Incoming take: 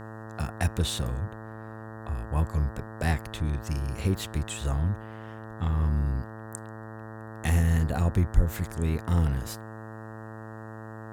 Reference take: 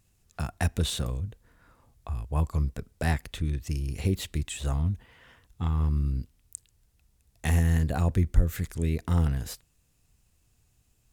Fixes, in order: de-hum 110 Hz, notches 17

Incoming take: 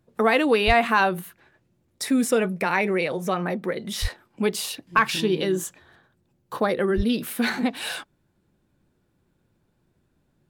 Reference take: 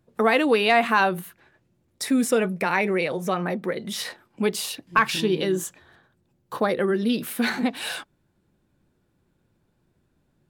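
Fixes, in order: 0.66–0.78 HPF 140 Hz 24 dB/oct; 4.01–4.13 HPF 140 Hz 24 dB/oct; 6.96–7.08 HPF 140 Hz 24 dB/oct

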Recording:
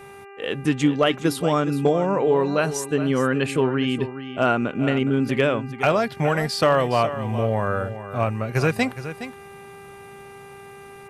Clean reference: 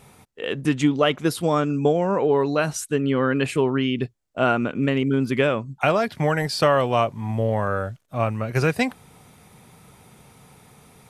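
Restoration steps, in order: clip repair -9 dBFS; de-hum 397 Hz, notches 7; inverse comb 0.416 s -12 dB

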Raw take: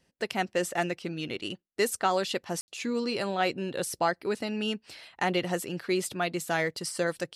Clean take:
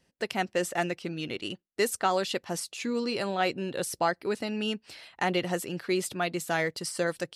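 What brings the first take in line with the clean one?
room tone fill 2.61–2.68

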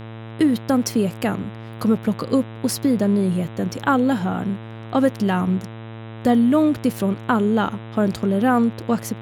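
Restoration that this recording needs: de-hum 112.4 Hz, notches 35

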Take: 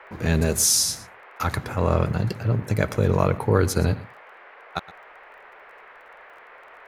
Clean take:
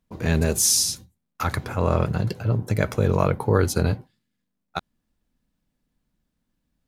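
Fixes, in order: de-click; noise print and reduce 30 dB; inverse comb 0.117 s -18 dB

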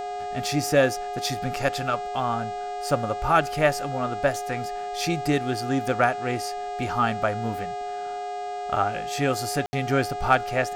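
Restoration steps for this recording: clip repair -7 dBFS; de-hum 410.8 Hz, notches 20; notch 720 Hz, Q 30; room tone fill 9.66–9.73

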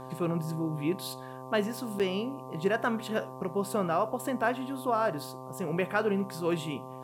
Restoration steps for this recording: de-hum 129.7 Hz, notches 9; interpolate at 1.99, 7.4 ms; expander -34 dBFS, range -21 dB

